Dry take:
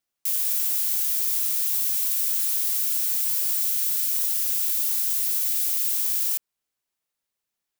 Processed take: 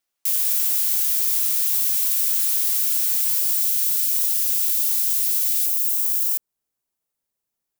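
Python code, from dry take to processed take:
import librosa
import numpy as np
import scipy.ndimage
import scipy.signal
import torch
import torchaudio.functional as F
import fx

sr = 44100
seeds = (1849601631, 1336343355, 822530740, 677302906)

y = fx.peak_eq(x, sr, hz=fx.steps((0.0, 94.0), (3.39, 580.0), (5.66, 2700.0)), db=-8.0, octaves=2.8)
y = y * librosa.db_to_amplitude(3.5)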